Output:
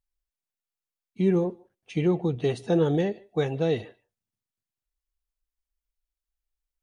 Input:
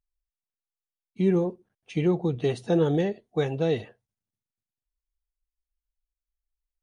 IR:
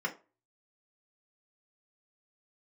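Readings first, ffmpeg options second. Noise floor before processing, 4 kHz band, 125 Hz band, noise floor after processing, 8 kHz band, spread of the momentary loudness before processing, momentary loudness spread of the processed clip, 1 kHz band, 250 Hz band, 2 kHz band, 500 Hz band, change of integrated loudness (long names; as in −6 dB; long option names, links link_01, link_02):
below −85 dBFS, 0.0 dB, 0.0 dB, below −85 dBFS, can't be measured, 6 LU, 6 LU, 0.0 dB, 0.0 dB, 0.0 dB, 0.0 dB, 0.0 dB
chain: -filter_complex "[0:a]asplit=2[link_01][link_02];[1:a]atrim=start_sample=2205,asetrate=79380,aresample=44100,adelay=146[link_03];[link_02][link_03]afir=irnorm=-1:irlink=0,volume=-26dB[link_04];[link_01][link_04]amix=inputs=2:normalize=0"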